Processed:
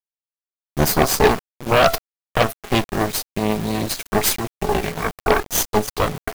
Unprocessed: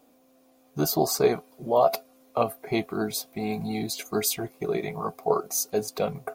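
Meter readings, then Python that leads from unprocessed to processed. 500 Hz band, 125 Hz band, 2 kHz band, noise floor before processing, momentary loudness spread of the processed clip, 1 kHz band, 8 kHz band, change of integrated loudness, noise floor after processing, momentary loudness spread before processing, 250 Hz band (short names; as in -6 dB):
+5.0 dB, +10.5 dB, +15.0 dB, -61 dBFS, 8 LU, +8.0 dB, +6.0 dB, +7.0 dB, under -85 dBFS, 9 LU, +6.5 dB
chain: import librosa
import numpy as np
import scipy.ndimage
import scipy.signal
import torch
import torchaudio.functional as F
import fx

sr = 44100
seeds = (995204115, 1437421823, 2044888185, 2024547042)

y = fx.cheby_harmonics(x, sr, harmonics=(3, 8), levels_db=(-34, -11), full_scale_db=-7.5)
y = fx.quant_dither(y, sr, seeds[0], bits=6, dither='none')
y = F.gain(torch.from_numpy(y), 5.0).numpy()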